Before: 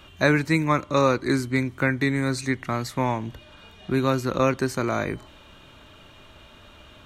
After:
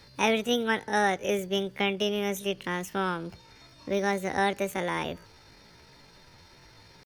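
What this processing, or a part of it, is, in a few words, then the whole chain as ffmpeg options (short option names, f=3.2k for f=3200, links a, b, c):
chipmunk voice: -af "asetrate=66075,aresample=44100,atempo=0.66742,volume=-5dB"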